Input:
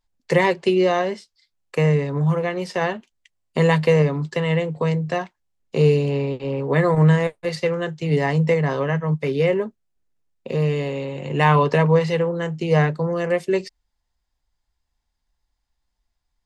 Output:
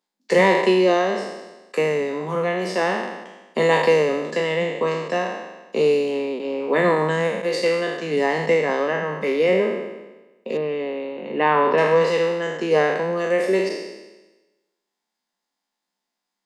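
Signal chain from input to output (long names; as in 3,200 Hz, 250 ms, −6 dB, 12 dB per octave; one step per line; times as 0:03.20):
peak hold with a decay on every bin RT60 1.14 s
elliptic high-pass filter 190 Hz, stop band 40 dB
0:10.57–0:11.78: high-frequency loss of the air 310 metres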